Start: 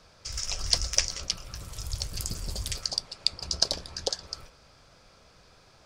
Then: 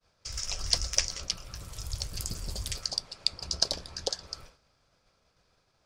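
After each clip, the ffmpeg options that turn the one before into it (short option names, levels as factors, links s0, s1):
-af "agate=range=0.0224:threshold=0.00398:ratio=3:detection=peak,volume=0.794"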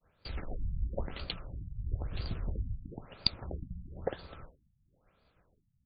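-filter_complex "[0:a]asplit=2[s0][s1];[s1]acrusher=samples=38:mix=1:aa=0.000001,volume=0.282[s2];[s0][s2]amix=inputs=2:normalize=0,afftfilt=real='re*lt(b*sr/1024,210*pow(4900/210,0.5+0.5*sin(2*PI*1*pts/sr)))':imag='im*lt(b*sr/1024,210*pow(4900/210,0.5+0.5*sin(2*PI*1*pts/sr)))':win_size=1024:overlap=0.75"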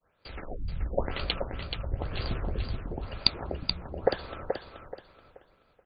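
-af "bass=f=250:g=-8,treble=f=4000:g=-7,dynaudnorm=f=120:g=9:m=2.82,aecho=1:1:429|858|1287|1716:0.501|0.14|0.0393|0.011,volume=1.19"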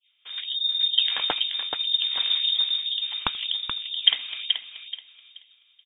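-af "aecho=1:1:83|166:0.0708|0.0212,adynamicsmooth=sensitivity=5:basefreq=1300,lowpass=f=3100:t=q:w=0.5098,lowpass=f=3100:t=q:w=0.6013,lowpass=f=3100:t=q:w=0.9,lowpass=f=3100:t=q:w=2.563,afreqshift=-3700,volume=2.11"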